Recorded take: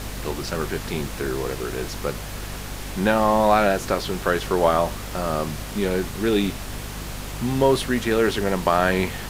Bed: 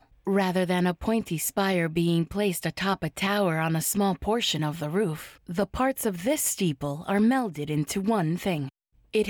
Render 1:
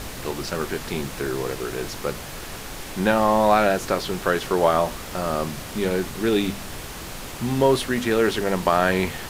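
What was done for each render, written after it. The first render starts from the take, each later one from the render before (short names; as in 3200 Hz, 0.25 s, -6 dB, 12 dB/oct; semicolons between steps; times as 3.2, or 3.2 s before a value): de-hum 50 Hz, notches 5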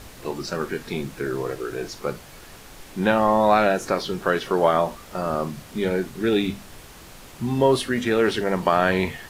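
noise print and reduce 9 dB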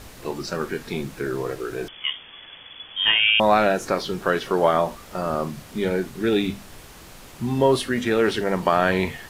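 1.88–3.4 inverted band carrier 3400 Hz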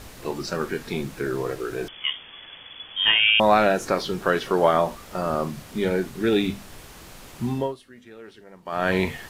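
7.45–8.95 dip -23.5 dB, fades 0.30 s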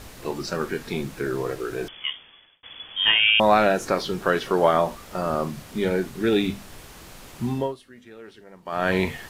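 1.89–2.63 fade out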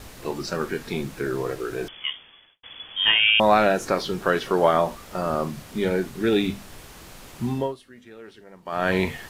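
gate with hold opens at -47 dBFS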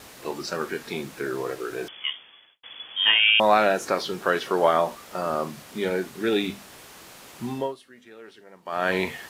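HPF 330 Hz 6 dB/oct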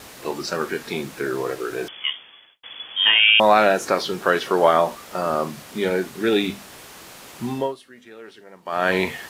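gain +4 dB; limiter -3 dBFS, peak gain reduction 2 dB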